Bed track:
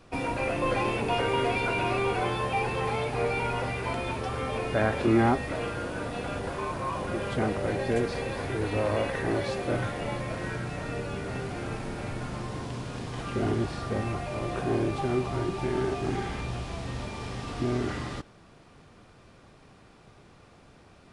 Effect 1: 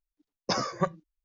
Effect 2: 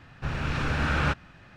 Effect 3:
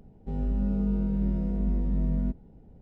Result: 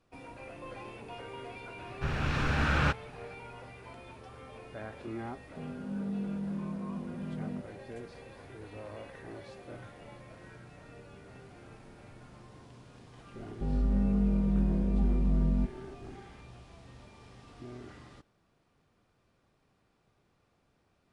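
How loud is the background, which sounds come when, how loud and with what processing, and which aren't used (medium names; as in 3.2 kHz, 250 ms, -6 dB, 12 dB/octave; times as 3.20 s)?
bed track -17.5 dB
1.79 s: add 2 -2 dB
5.29 s: add 3 -6.5 dB + high-pass 130 Hz 24 dB/octave
13.34 s: add 3 -0.5 dB
not used: 1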